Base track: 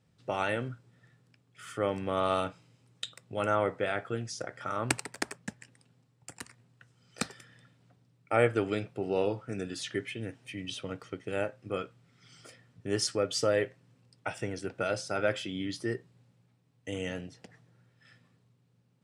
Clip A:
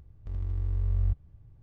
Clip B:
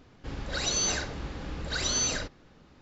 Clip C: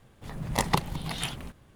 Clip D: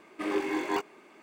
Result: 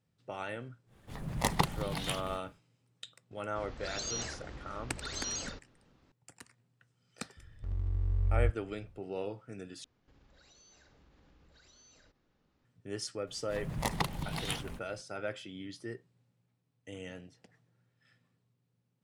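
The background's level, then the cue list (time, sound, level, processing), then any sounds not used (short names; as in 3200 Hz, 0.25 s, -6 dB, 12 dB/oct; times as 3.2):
base track -9 dB
0.86 add C -3.5 dB, fades 0.10 s
3.31 add B -10 dB + shaped vibrato square 4.4 Hz, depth 100 cents
7.37 add A -2 dB
9.84 replace with B -18 dB + compressor, threshold -42 dBFS
13.27 add C -3.5 dB + limiter -13 dBFS
not used: D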